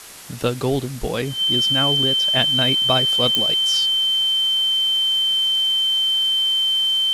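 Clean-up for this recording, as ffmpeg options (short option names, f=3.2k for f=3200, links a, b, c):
-af "adeclick=t=4,bandreject=f=3.1k:w=30,afwtdn=0.013"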